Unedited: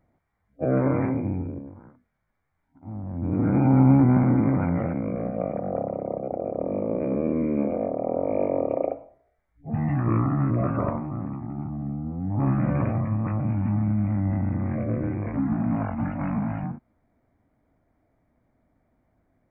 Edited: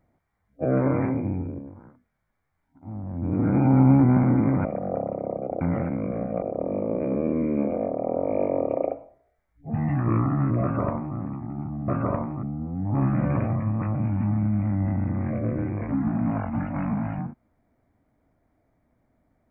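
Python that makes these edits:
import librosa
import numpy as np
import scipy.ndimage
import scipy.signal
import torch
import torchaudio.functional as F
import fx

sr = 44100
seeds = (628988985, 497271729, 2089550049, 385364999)

y = fx.edit(x, sr, fx.move(start_s=4.65, length_s=0.81, to_s=6.42),
    fx.duplicate(start_s=10.62, length_s=0.55, to_s=11.88), tone=tone)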